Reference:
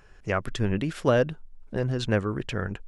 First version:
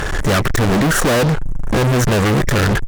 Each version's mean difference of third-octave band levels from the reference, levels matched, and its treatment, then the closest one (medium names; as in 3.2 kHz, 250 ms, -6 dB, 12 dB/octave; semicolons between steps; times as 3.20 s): 12.0 dB: FFT band-reject 2–5.5 kHz; in parallel at +1 dB: compression, threshold -38 dBFS, peak gain reduction 19.5 dB; on the sum: fuzz box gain 48 dB, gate -53 dBFS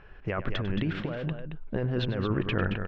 7.0 dB: low-pass 3.4 kHz 24 dB/octave; compressor with a negative ratio -29 dBFS, ratio -1; multi-tap echo 98/223 ms -14/-8 dB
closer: second